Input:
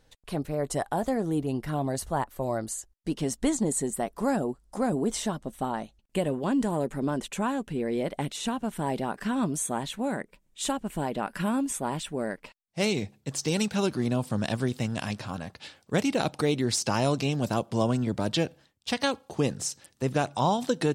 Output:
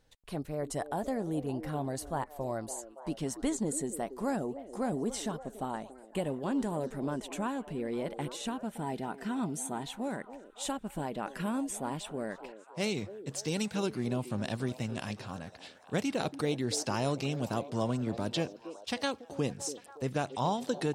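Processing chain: 8.54–9.86 s: comb of notches 560 Hz; repeats whose band climbs or falls 283 ms, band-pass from 400 Hz, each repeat 0.7 oct, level -9 dB; trim -6 dB

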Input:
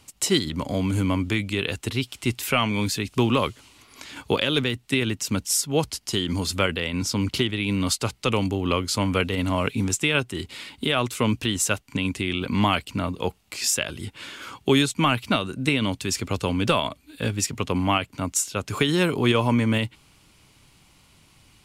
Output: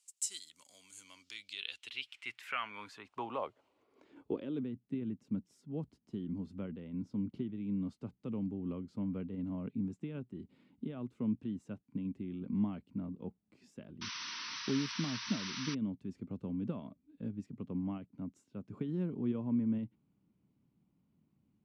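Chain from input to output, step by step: band-pass sweep 7.7 kHz -> 210 Hz, 0.87–4.76 s; painted sound noise, 14.01–15.75 s, 900–6100 Hz -35 dBFS; trim -8 dB

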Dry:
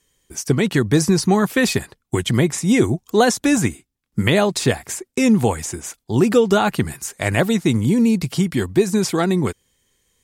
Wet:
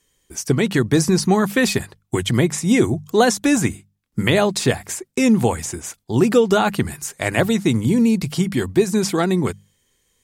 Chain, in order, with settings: hum notches 50/100/150/200 Hz

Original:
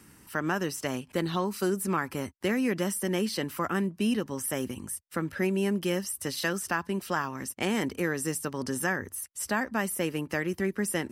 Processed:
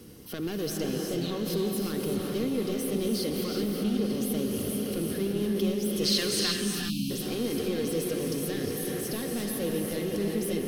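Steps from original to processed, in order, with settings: rattle on loud lows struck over -34 dBFS, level -35 dBFS; on a send: echo that smears into a reverb 522 ms, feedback 70%, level -10 dB; on the sum: saturation -27.5 dBFS, distortion -10 dB; spectral selection erased 6.79–7.40 s, 310–2200 Hz; in parallel at -3 dB: compressor with a negative ratio -39 dBFS, ratio -1; on the sum: speed mistake 24 fps film run at 25 fps; small resonant body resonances 480/740/1100/2100 Hz, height 8 dB; time-frequency box 6.03–6.54 s, 1–9.7 kHz +9 dB; graphic EQ 500/1000/2000/4000/8000 Hz +4/-11/-12/+6/-9 dB; gated-style reverb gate 400 ms rising, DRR 2 dB; dynamic bell 690 Hz, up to -7 dB, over -44 dBFS, Q 1.3

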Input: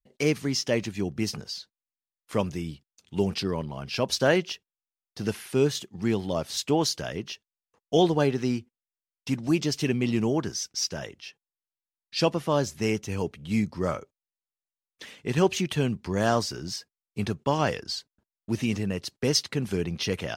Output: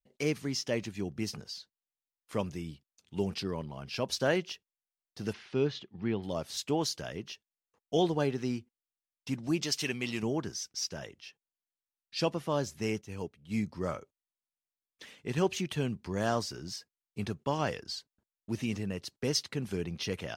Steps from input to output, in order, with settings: 5.32–6.22 s: low-pass 5.6 kHz -> 3.3 kHz 24 dB/octave; 9.63–10.23 s: tilt shelf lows -7 dB, about 640 Hz; 13.01–13.58 s: upward expansion 1.5:1, over -41 dBFS; trim -6.5 dB

